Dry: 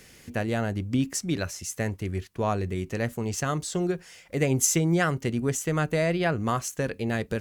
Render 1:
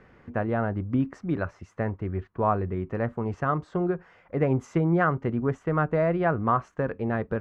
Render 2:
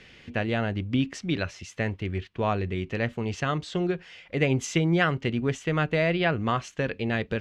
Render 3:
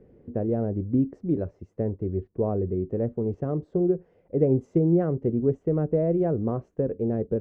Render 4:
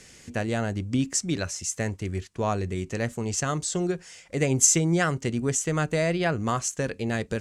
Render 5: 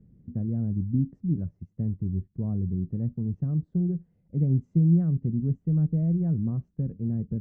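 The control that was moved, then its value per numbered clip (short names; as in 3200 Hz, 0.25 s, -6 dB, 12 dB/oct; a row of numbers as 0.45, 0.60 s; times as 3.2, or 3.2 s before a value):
synth low-pass, frequency: 1200, 3100, 450, 7800, 180 Hz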